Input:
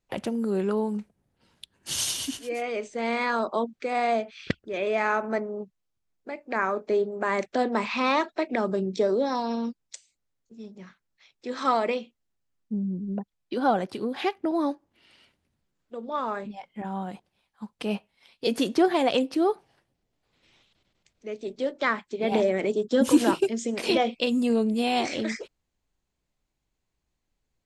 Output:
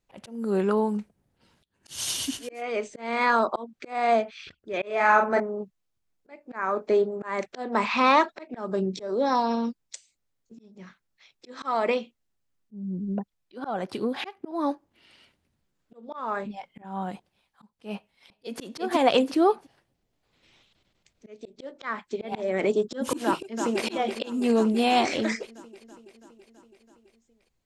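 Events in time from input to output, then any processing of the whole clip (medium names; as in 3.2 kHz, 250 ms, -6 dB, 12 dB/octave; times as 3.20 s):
4.86–5.40 s: doubling 39 ms -4 dB
17.95–18.61 s: echo throw 350 ms, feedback 20%, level -1 dB
23.24–23.85 s: echo throw 330 ms, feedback 70%, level -7.5 dB
whole clip: dynamic bell 1.1 kHz, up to +5 dB, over -37 dBFS, Q 0.91; slow attack 285 ms; trim +1.5 dB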